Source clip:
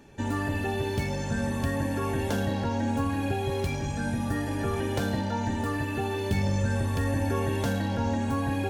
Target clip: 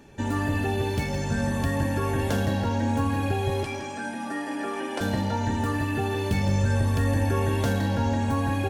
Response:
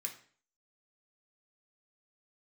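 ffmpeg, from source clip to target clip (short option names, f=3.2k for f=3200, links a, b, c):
-filter_complex "[0:a]asettb=1/sr,asplit=3[a][b][c];[a]atrim=end=3.634[d];[b]atrim=start=3.63:end=5.01,asetpts=PTS-STARTPTS,afade=t=in:d=0.004:c=qsin,afade=t=out:st=1.376:d=0.004:c=qsin,highpass=f=270:w=0.5412,highpass=f=270:w=1.3066,equalizer=f=450:t=q:w=4:g=-8,equalizer=f=3.9k:t=q:w=4:g=-6,equalizer=f=6.7k:t=q:w=4:g=-6,lowpass=f=9.8k:w=0.5412,lowpass=f=9.8k:w=1.3066[e];[c]atrim=start=5.006[f];[d][e]acrossfade=d=0.004:c1=hsin:c2=qsin[g];[g][f]acrossfade=d=0.004:c1=qsin:c2=hsin,asplit=2[h][i];[i]aecho=0:1:164|328|492|656:0.299|0.107|0.0387|0.0139[j];[h][j]amix=inputs=2:normalize=0,volume=2dB"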